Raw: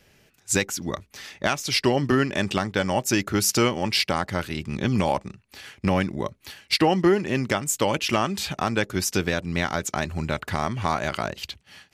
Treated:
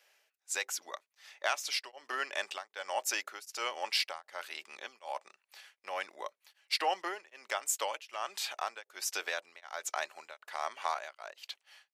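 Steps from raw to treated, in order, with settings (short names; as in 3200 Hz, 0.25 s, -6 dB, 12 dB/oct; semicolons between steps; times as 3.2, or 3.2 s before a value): 10.94–11.46 gate -29 dBFS, range -8 dB; HPF 600 Hz 24 dB/oct; beating tremolo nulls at 1.3 Hz; gain -6.5 dB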